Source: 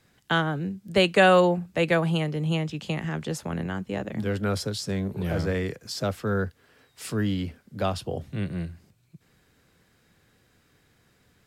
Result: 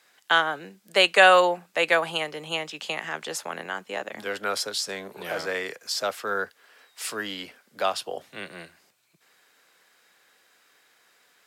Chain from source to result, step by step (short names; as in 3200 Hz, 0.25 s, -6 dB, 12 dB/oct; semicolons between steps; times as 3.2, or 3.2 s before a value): HPF 690 Hz 12 dB/oct; gain +5.5 dB